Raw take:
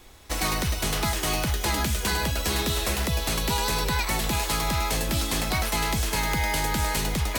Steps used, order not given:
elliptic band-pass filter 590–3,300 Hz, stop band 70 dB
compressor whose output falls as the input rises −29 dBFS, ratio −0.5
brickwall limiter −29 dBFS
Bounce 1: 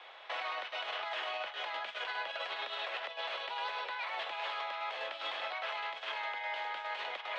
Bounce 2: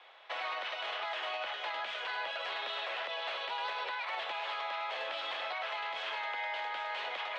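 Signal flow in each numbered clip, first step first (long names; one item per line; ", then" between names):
compressor whose output falls as the input rises, then elliptic band-pass filter, then brickwall limiter
elliptic band-pass filter, then compressor whose output falls as the input rises, then brickwall limiter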